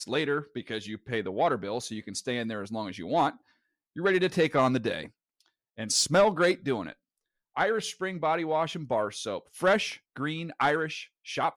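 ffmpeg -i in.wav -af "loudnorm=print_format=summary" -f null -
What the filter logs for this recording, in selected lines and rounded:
Input Integrated:    -28.8 LUFS
Input True Peak:     -14.8 dBTP
Input LRA:             3.8 LU
Input Threshold:     -39.2 LUFS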